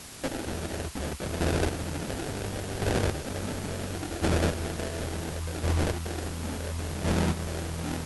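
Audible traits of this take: aliases and images of a low sample rate 1100 Hz, jitter 20%; chopped level 0.71 Hz, depth 60%, duty 20%; a quantiser's noise floor 8-bit, dither triangular; MP2

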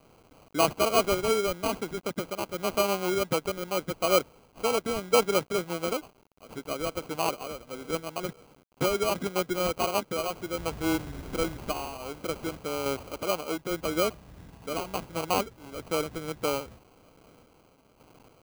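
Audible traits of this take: a quantiser's noise floor 10-bit, dither none; random-step tremolo; aliases and images of a low sample rate 1800 Hz, jitter 0%

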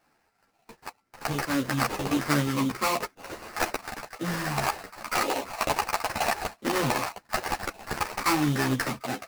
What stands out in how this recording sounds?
aliases and images of a low sample rate 3400 Hz, jitter 20%; a shimmering, thickened sound

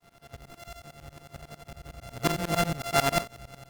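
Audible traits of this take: a buzz of ramps at a fixed pitch in blocks of 64 samples; tremolo saw up 11 Hz, depth 100%; Opus

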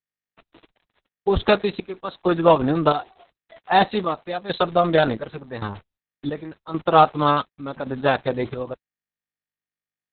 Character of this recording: a quantiser's noise floor 8-bit, dither none; chopped level 0.89 Hz, depth 65%, duty 60%; Opus

